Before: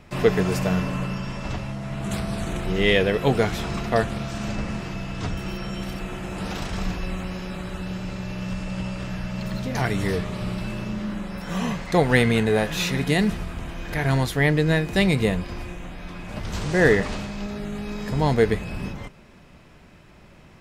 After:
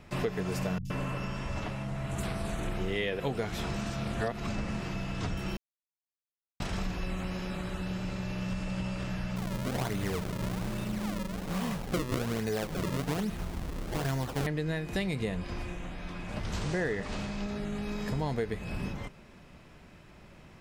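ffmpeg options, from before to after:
-filter_complex "[0:a]asettb=1/sr,asplit=3[s0][s1][s2];[s0]atrim=end=0.784[s3];[s1]atrim=start=0.78:end=3.2,asetpts=PTS-STARTPTS,afade=t=in:d=0.004:c=qsin,afade=t=out:st=2.416:d=0.004:c=qsin,acrossover=split=160|4700[s4][s5][s6];[s6]adelay=70[s7];[s5]adelay=120[s8];[s4][s8][s7]amix=inputs=3:normalize=0,atrim=end_sample=106722[s9];[s2]atrim=start=3.196[s10];[s3][s9]acrossfade=d=0.004:c1=hsin:c2=qsin[s11];[s11][s10]acrossfade=d=0.004:c1=qsin:c2=hsin,asettb=1/sr,asplit=3[s12][s13][s14];[s12]atrim=end=9.364[s15];[s13]atrim=start=9.36:end=14.47,asetpts=PTS-STARTPTS,afade=t=in:d=0.004:c=qsin,afade=t=out:st=5.106:d=0.004:c=qsin,acrusher=samples=33:mix=1:aa=0.000001:lfo=1:lforange=52.8:lforate=1.2[s16];[s14]atrim=start=14.466[s17];[s15][s16]acrossfade=d=0.004:c1=hsin:c2=qsin[s18];[s18][s17]acrossfade=d=0.004:c1=qsin:c2=hsin,asettb=1/sr,asplit=3[s19][s20][s21];[s19]atrim=end=15.184[s22];[s20]atrim=start=15.18:end=17.83,asetpts=PTS-STARTPTS,afade=t=in:d=0.004:c=qsin,afade=t=out:st=2.646:d=0.004:c=qsin,lowpass=11000[s23];[s21]atrim=start=17.826[s24];[s22][s23]acrossfade=d=0.004:c1=hsin:c2=qsin[s25];[s25][s24]acrossfade=d=0.004:c1=qsin:c2=hsin,asplit=5[s26][s27][s28][s29][s30];[s26]atrim=end=3.752[s31];[s27]atrim=start=3.748:end=4.492,asetpts=PTS-STARTPTS,areverse[s32];[s28]atrim=start=4.488:end=5.57,asetpts=PTS-STARTPTS,afade=t=out:st=1.078:d=0.004:c=hsin[s33];[s29]atrim=start=5.57:end=6.6,asetpts=PTS-STARTPTS,volume=0[s34];[s30]atrim=start=6.6,asetpts=PTS-STARTPTS,afade=t=in:d=0.004:c=hsin[s35];[s31][s32]acrossfade=d=0.004:c1=hsin:c2=hsin[s36];[s33][s34][s35]concat=n=3:v=0:a=1[s37];[s36][s37]acrossfade=d=0.004:c1=hsin:c2=hsin,acompressor=threshold=0.0562:ratio=6,volume=0.668"

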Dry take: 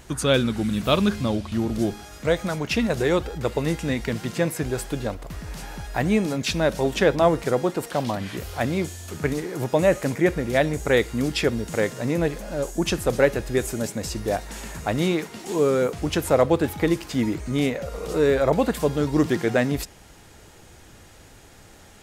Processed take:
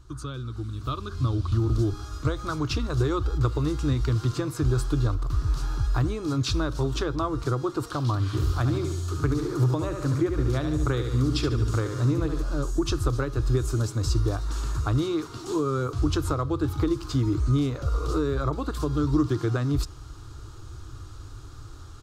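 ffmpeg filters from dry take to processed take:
-filter_complex "[0:a]asplit=3[s0][s1][s2];[s0]afade=t=out:st=8.32:d=0.02[s3];[s1]aecho=1:1:72|144|216|288|360:0.447|0.197|0.0865|0.0381|0.0167,afade=t=in:st=8.32:d=0.02,afade=t=out:st=12.42:d=0.02[s4];[s2]afade=t=in:st=12.42:d=0.02[s5];[s3][s4][s5]amix=inputs=3:normalize=0,acompressor=threshold=0.0708:ratio=5,firequalizer=gain_entry='entry(130,0);entry(180,-28);entry(300,-6);entry(540,-21);entry(830,-18);entry(1200,-2);entry(1900,-25);entry(4000,-10);entry(11000,-21)':delay=0.05:min_phase=1,dynaudnorm=f=760:g=3:m=3.76"

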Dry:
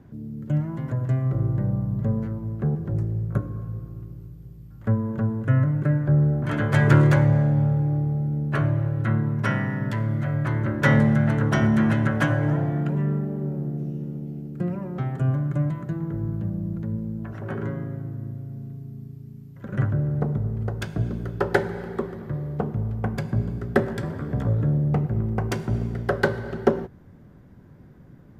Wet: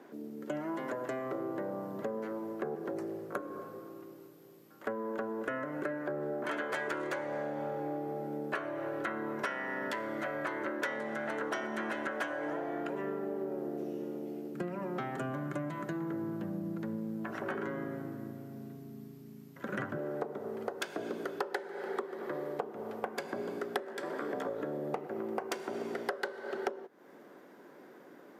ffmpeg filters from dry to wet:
-filter_complex "[0:a]asplit=3[s0][s1][s2];[s0]afade=t=out:st=14.53:d=0.02[s3];[s1]asubboost=boost=6.5:cutoff=160,afade=t=in:st=14.53:d=0.02,afade=t=out:st=19.96:d=0.02[s4];[s2]afade=t=in:st=19.96:d=0.02[s5];[s3][s4][s5]amix=inputs=3:normalize=0,highpass=f=340:w=0.5412,highpass=f=340:w=1.3066,acompressor=threshold=0.0126:ratio=12,volume=1.88"

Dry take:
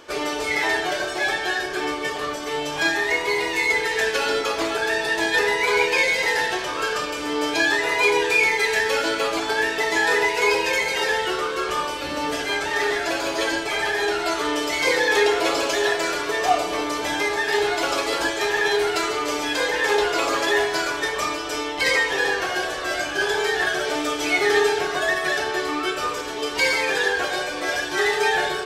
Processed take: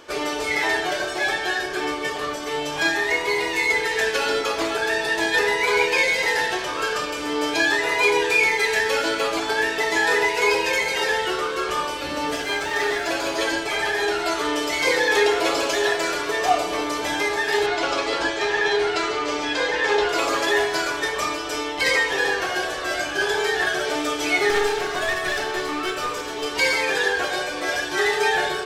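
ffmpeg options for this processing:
-filter_complex "[0:a]asettb=1/sr,asplit=3[s0][s1][s2];[s0]atrim=end=12.354[s3];[s1]atrim=start=12.35:end=13.09,asetpts=PTS-STARTPTS,afade=t=in:d=0.004:c=qsin,afade=t=out:st=0.736:d=0.004:c=qsin,aeval=exprs='sgn(val(0))*max(abs(val(0))-0.00501,0)':c=same[s4];[s2]atrim=start=13.086[s5];[s3][s4]acrossfade=d=0.004:c1=hsin:c2=qsin[s6];[s6][s5]acrossfade=d=0.004:c1=qsin:c2=hsin,asettb=1/sr,asplit=3[s7][s8][s9];[s7]atrim=end=17.664[s10];[s8]atrim=start=17.66:end=20.09,asetpts=PTS-STARTPTS,afade=t=in:d=0.004:c=qsin,afade=t=out:st=2.426:d=0.004:c=qsin,lowpass=5800[s11];[s9]atrim=start=20.086[s12];[s10][s11]acrossfade=d=0.004:c1=hsin:c2=qsin[s13];[s13][s12]acrossfade=d=0.004:c1=qsin:c2=hsin,asettb=1/sr,asplit=3[s14][s15][s16];[s14]atrim=end=24.504[s17];[s15]atrim=start=24.5:end=26.46,asetpts=PTS-STARTPTS,afade=t=in:d=0.004:c=qsin,afade=t=out:st=1.956:d=0.004:c=qsin,aeval=exprs='clip(val(0),-1,0.0596)':c=same[s18];[s16]atrim=start=26.456[s19];[s17][s18]acrossfade=d=0.004:c1=hsin:c2=qsin[s20];[s20][s19]acrossfade=d=0.004:c1=qsin:c2=hsin"

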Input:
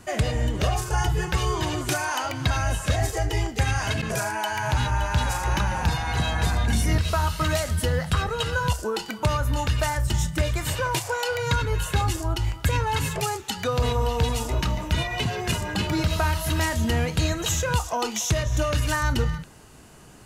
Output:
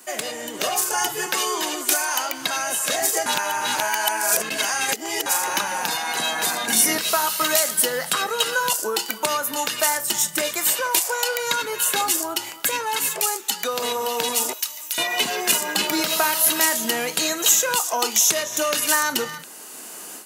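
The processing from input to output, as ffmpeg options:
-filter_complex "[0:a]asettb=1/sr,asplit=3[s0][s1][s2];[s0]atrim=end=1.264[s3];[s1]atrim=start=1.26:end=2.01,asetpts=PTS-STARTPTS,afade=t=in:d=0.004:c=qsin,afade=t=out:st=0.746:d=0.004:c=qsin,highpass=f=180:w=0.5412,highpass=f=180:w=1.3066[s4];[s2]atrim=start=2.006[s5];[s3][s4]acrossfade=d=0.004:c1=hsin:c2=qsin[s6];[s6][s5]acrossfade=d=0.004:c1=qsin:c2=hsin,asettb=1/sr,asplit=3[s7][s8][s9];[s7]atrim=end=14.534[s10];[s8]atrim=start=14.53:end=14.98,asetpts=PTS-STARTPTS,afade=t=in:d=0.004:c=qsin,afade=t=out:st=0.446:d=0.004:c=qsin,aderivative[s11];[s9]atrim=start=14.976[s12];[s10][s11]acrossfade=d=0.004:c1=hsin:c2=qsin[s13];[s13][s12]acrossfade=d=0.004:c1=qsin:c2=hsin,asplit=3[s14][s15][s16];[s14]atrim=end=3.262[s17];[s15]atrim=start=3.258:end=5.262,asetpts=PTS-STARTPTS,areverse[s18];[s16]atrim=start=5.258[s19];[s17][s18]acrossfade=d=0.004:c1=hsin:c2=hsin[s20];[s20][s19]acrossfade=d=0.004:c1=hsin:c2=hsin,highpass=f=220:w=0.5412,highpass=f=220:w=1.3066,aemphasis=mode=production:type=bsi,dynaudnorm=f=360:g=3:m=3.76,volume=0.891"

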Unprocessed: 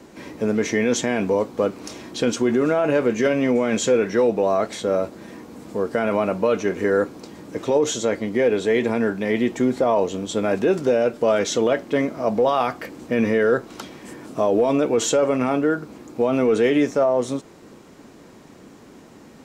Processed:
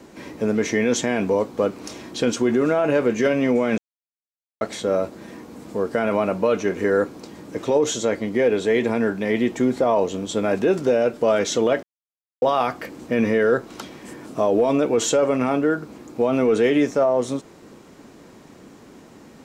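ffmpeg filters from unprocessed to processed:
-filter_complex "[0:a]asplit=5[s0][s1][s2][s3][s4];[s0]atrim=end=3.78,asetpts=PTS-STARTPTS,afade=t=out:st=3.776:d=0.004:c=hsin[s5];[s1]atrim=start=3.78:end=4.61,asetpts=PTS-STARTPTS,volume=0[s6];[s2]atrim=start=4.61:end=11.83,asetpts=PTS-STARTPTS,afade=t=in:d=0.004:c=hsin,afade=t=out:st=7.216:d=0.004:c=hsin[s7];[s3]atrim=start=11.83:end=12.42,asetpts=PTS-STARTPTS,volume=0[s8];[s4]atrim=start=12.42,asetpts=PTS-STARTPTS,afade=t=in:d=0.004:c=hsin[s9];[s5][s6][s7][s8][s9]concat=n=5:v=0:a=1"

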